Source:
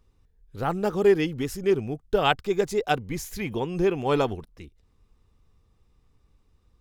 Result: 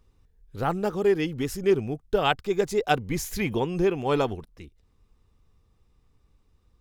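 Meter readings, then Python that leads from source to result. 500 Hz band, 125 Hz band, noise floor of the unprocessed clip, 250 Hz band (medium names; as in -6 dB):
-1.0 dB, +0.5 dB, -65 dBFS, 0.0 dB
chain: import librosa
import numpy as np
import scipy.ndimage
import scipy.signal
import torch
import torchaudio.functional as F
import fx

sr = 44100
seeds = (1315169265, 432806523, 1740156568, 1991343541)

y = fx.rider(x, sr, range_db=4, speed_s=0.5)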